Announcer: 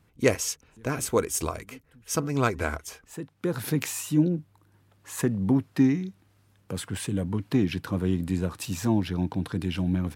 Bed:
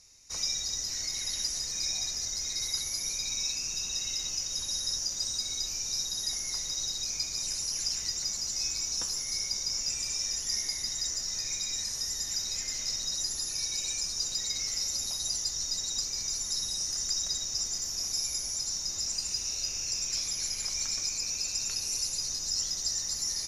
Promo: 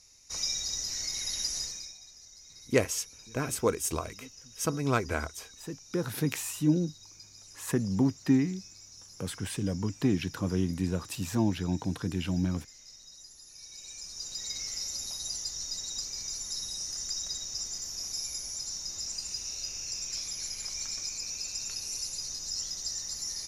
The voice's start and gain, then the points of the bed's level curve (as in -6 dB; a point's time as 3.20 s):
2.50 s, -3.0 dB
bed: 1.64 s -0.5 dB
1.98 s -18.5 dB
13.42 s -18.5 dB
14.50 s -4 dB